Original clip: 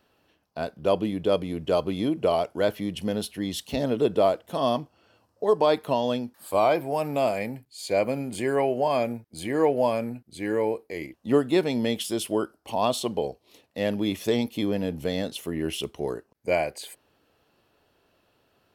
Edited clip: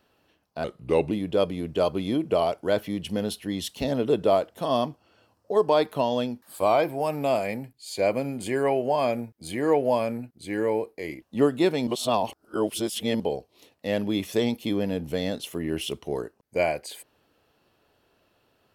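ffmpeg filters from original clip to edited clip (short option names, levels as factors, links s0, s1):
-filter_complex "[0:a]asplit=5[s0][s1][s2][s3][s4];[s0]atrim=end=0.644[s5];[s1]atrim=start=0.64:end=1.03,asetpts=PTS-STARTPTS,asetrate=36603,aresample=44100[s6];[s2]atrim=start=1.026:end=11.792[s7];[s3]atrim=start=11.788:end=13.122,asetpts=PTS-STARTPTS,areverse[s8];[s4]atrim=start=13.118[s9];[s5][s6]acrossfade=d=0.004:c1=hsin:c2=hsin[s10];[s10][s7]acrossfade=d=0.004:c1=hsin:c2=hsin[s11];[s11][s8]acrossfade=d=0.004:c1=hsin:c2=hsin[s12];[s12][s9]acrossfade=d=0.004:c1=hsin:c2=hsin"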